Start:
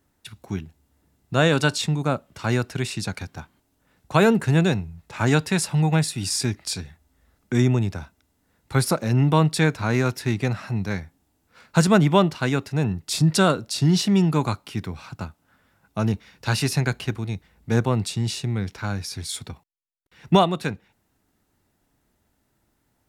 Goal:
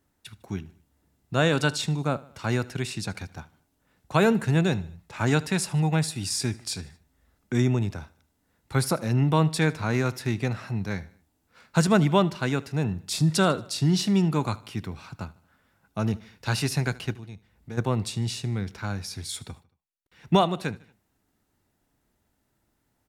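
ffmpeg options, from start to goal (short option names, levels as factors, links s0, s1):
-filter_complex "[0:a]asplit=3[s0][s1][s2];[s0]afade=t=out:st=17.14:d=0.02[s3];[s1]acompressor=threshold=0.00891:ratio=2,afade=t=in:st=17.14:d=0.02,afade=t=out:st=17.77:d=0.02[s4];[s2]afade=t=in:st=17.77:d=0.02[s5];[s3][s4][s5]amix=inputs=3:normalize=0,aecho=1:1:76|152|228:0.0891|0.0428|0.0205,volume=0.668"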